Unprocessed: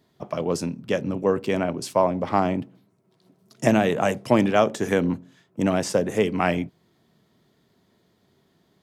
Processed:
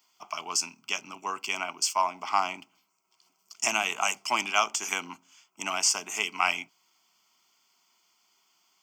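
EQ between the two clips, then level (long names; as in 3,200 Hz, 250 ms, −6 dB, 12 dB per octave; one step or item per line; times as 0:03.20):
high-pass filter 770 Hz 12 dB per octave
high-shelf EQ 2,300 Hz +12 dB
phaser with its sweep stopped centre 2,600 Hz, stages 8
0.0 dB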